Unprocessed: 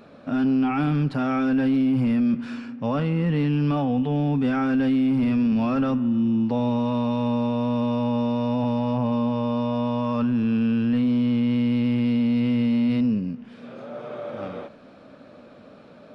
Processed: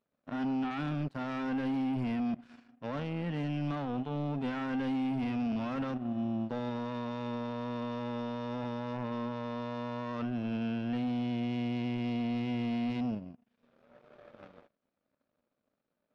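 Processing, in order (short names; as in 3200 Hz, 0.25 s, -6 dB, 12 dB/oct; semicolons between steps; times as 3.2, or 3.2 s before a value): power-law curve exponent 2; gain -8.5 dB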